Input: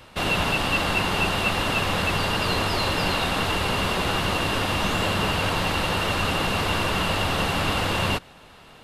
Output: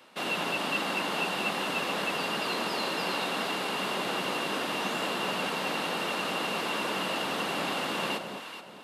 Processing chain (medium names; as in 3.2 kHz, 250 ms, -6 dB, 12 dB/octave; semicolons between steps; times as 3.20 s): high-pass 200 Hz 24 dB/octave; echo whose repeats swap between lows and highs 213 ms, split 890 Hz, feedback 57%, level -4.5 dB; trim -7 dB